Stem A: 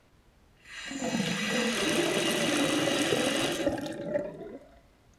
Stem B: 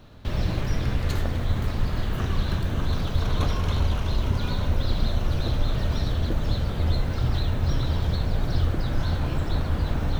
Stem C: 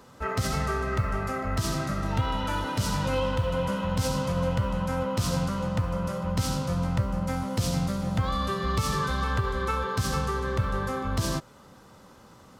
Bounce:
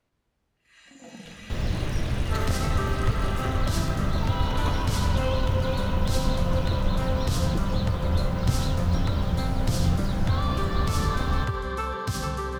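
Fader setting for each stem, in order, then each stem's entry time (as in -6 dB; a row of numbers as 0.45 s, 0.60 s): -13.5 dB, -2.0 dB, -1.5 dB; 0.00 s, 1.25 s, 2.10 s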